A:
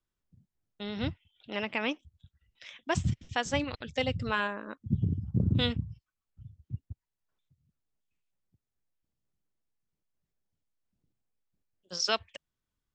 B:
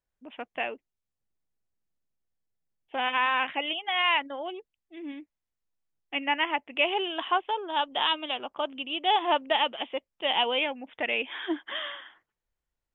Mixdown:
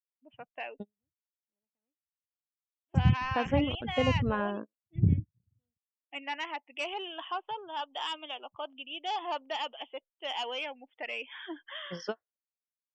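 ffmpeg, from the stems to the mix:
ffmpeg -i stem1.wav -i stem2.wav -filter_complex "[0:a]tiltshelf=frequency=1200:gain=7,volume=-1dB,asplit=3[link_01][link_02][link_03];[link_01]atrim=end=5.78,asetpts=PTS-STARTPTS,afade=type=out:start_time=5.776:duration=0.004:curve=hsin[link_04];[link_02]atrim=start=5.78:end=6.93,asetpts=PTS-STARTPTS,volume=0[link_05];[link_03]atrim=start=6.93,asetpts=PTS-STARTPTS,afade=type=in:duration=0.004:curve=hsin[link_06];[link_04][link_05][link_06]concat=n=3:v=0:a=1[link_07];[1:a]asoftclip=type=tanh:threshold=-20.5dB,highpass=frequency=680:poles=1,adynamicequalizer=threshold=0.00708:dfrequency=2300:dqfactor=0.7:tfrequency=2300:tqfactor=0.7:attack=5:release=100:ratio=0.375:range=2.5:mode=boostabove:tftype=highshelf,volume=-3dB,asplit=2[link_08][link_09];[link_09]apad=whole_len=571014[link_10];[link_07][link_10]sidechaingate=range=-44dB:threshold=-50dB:ratio=16:detection=peak[link_11];[link_11][link_08]amix=inputs=2:normalize=0,afftdn=noise_reduction=20:noise_floor=-45,highshelf=frequency=2100:gain=-11" out.wav

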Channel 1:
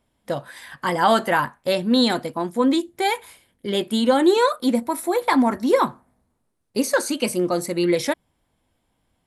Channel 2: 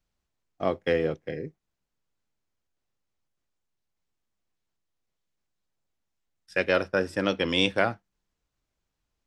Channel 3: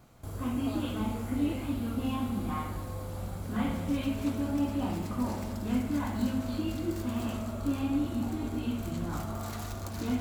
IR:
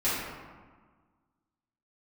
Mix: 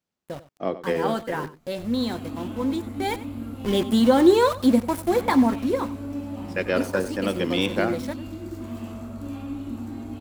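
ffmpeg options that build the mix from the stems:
-filter_complex "[0:a]aeval=exprs='val(0)*gte(abs(val(0)),0.0398)':channel_layout=same,lowshelf=frequency=400:gain=8.5,volume=-3.5dB,afade=type=in:start_time=2.95:duration=0.33:silence=0.354813,afade=type=out:start_time=5.19:duration=0.65:silence=0.334965,asplit=2[link_01][link_02];[link_02]volume=-16.5dB[link_03];[1:a]highpass=200,lowshelf=frequency=390:gain=8,volume=-3dB,asplit=2[link_04][link_05];[link_05]volume=-14.5dB[link_06];[2:a]adelay=1550,volume=-10dB,asplit=2[link_07][link_08];[link_08]volume=-7.5dB[link_09];[3:a]atrim=start_sample=2205[link_10];[link_09][link_10]afir=irnorm=-1:irlink=0[link_11];[link_03][link_06]amix=inputs=2:normalize=0,aecho=0:1:94:1[link_12];[link_01][link_04][link_07][link_11][link_12]amix=inputs=5:normalize=0"

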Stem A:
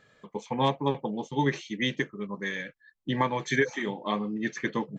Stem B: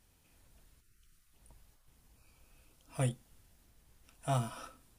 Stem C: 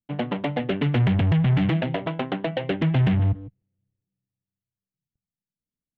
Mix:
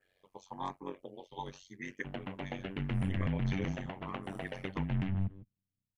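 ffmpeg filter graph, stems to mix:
ffmpeg -i stem1.wav -i stem2.wav -i stem3.wav -filter_complex "[0:a]lowshelf=frequency=220:gain=-11,asplit=2[link_01][link_02];[link_02]afreqshift=0.91[link_03];[link_01][link_03]amix=inputs=2:normalize=1,volume=-5.5dB[link_04];[1:a]volume=-14dB[link_05];[2:a]equalizer=frequency=400:width=0.59:gain=-6,adelay=1950,volume=-7dB[link_06];[link_04][link_05][link_06]amix=inputs=3:normalize=0,adynamicequalizer=threshold=0.00112:dfrequency=3600:dqfactor=2.4:tfrequency=3600:tqfactor=2.4:attack=5:release=100:ratio=0.375:range=3:mode=cutabove:tftype=bell,tremolo=f=93:d=0.974" out.wav

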